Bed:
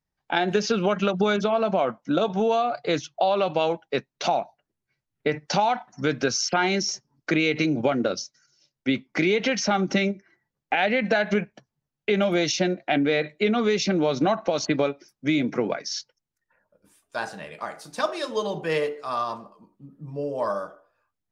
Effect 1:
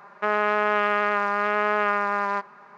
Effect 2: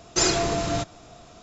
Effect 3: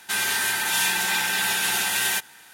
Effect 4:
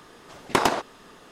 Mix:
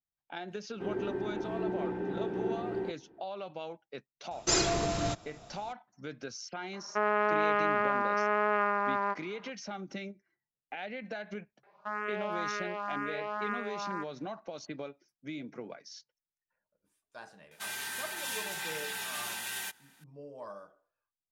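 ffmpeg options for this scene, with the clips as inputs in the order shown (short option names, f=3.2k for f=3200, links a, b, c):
-filter_complex "[3:a]asplit=2[a][b];[1:a]asplit=2[c][d];[0:a]volume=-18dB[e];[a]lowpass=f=370:t=q:w=4.1[f];[c]lowpass=f=1.7k:p=1[g];[d]asplit=2[h][i];[i]afreqshift=2[j];[h][j]amix=inputs=2:normalize=1[k];[f]atrim=end=2.53,asetpts=PTS-STARTPTS,afade=t=in:d=0.004:c=hsin,afade=t=out:st=2.526:d=0.004:c=hsin,adelay=710[l];[2:a]atrim=end=1.42,asetpts=PTS-STARTPTS,volume=-5.5dB,afade=t=in:d=0.004:c=hsin,afade=t=out:st=1.416:d=0.004:c=hsin,adelay=4310[m];[g]atrim=end=2.77,asetpts=PTS-STARTPTS,volume=-4dB,afade=t=in:d=0.004:c=hsin,afade=t=out:st=2.766:d=0.004:c=hsin,adelay=6730[n];[k]atrim=end=2.77,asetpts=PTS-STARTPTS,volume=-10.5dB,afade=t=in:d=0.004:c=hsin,afade=t=out:st=2.766:d=0.004:c=hsin,adelay=11630[o];[b]atrim=end=2.53,asetpts=PTS-STARTPTS,volume=-14.5dB,afade=t=in:d=0.004:c=hsin,afade=t=out:st=2.526:d=0.004:c=hsin,adelay=17510[p];[e][l][m][n][o][p]amix=inputs=6:normalize=0"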